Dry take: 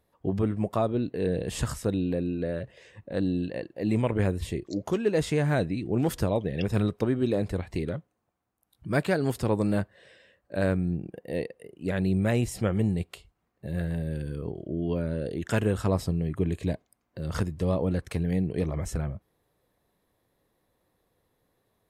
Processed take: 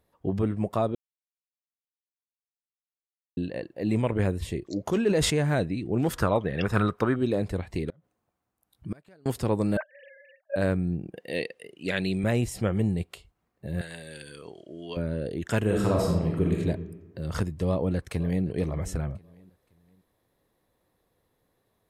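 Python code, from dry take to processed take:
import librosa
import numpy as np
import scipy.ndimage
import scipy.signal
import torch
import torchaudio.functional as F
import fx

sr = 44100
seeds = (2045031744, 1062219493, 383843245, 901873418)

y = fx.sustainer(x, sr, db_per_s=39.0, at=(4.86, 5.49), fade=0.02)
y = fx.peak_eq(y, sr, hz=1300.0, db=14.5, octaves=1.0, at=(6.13, 7.16))
y = fx.gate_flip(y, sr, shuts_db=-21.0, range_db=-30, at=(7.89, 9.26))
y = fx.sine_speech(y, sr, at=(9.77, 10.56))
y = fx.weighting(y, sr, curve='D', at=(11.17, 12.24))
y = fx.weighting(y, sr, curve='ITU-R 468', at=(13.81, 14.97))
y = fx.reverb_throw(y, sr, start_s=15.64, length_s=0.94, rt60_s=1.2, drr_db=-1.5)
y = fx.echo_throw(y, sr, start_s=17.67, length_s=0.78, ms=520, feedback_pct=35, wet_db=-18.0)
y = fx.edit(y, sr, fx.silence(start_s=0.95, length_s=2.42), tone=tone)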